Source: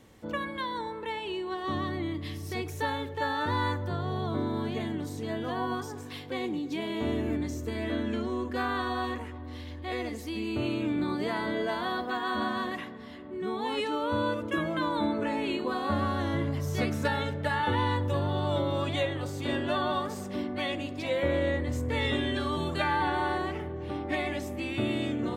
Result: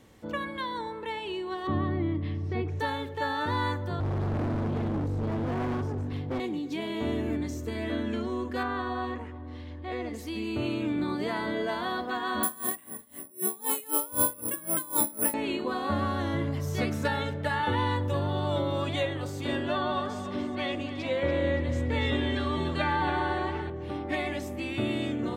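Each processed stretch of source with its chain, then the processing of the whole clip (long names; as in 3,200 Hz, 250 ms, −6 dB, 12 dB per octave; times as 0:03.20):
0:01.67–0:02.80: low-pass filter 2,900 Hz + spectral tilt −2 dB per octave
0:04.00–0:06.40: spectral tilt −4.5 dB per octave + hard clipping −27.5 dBFS
0:08.63–0:10.14: low-pass filter 9,100 Hz + high-shelf EQ 2,900 Hz −10.5 dB
0:12.43–0:15.34: parametric band 1,000 Hz +3 dB 0.28 octaves + bad sample-rate conversion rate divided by 4×, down filtered, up zero stuff + tremolo with a sine in dB 3.9 Hz, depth 23 dB
0:19.68–0:23.70: high-frequency loss of the air 52 metres + echo with a time of its own for lows and highs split 350 Hz, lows 206 ms, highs 287 ms, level −11 dB
whole clip: no processing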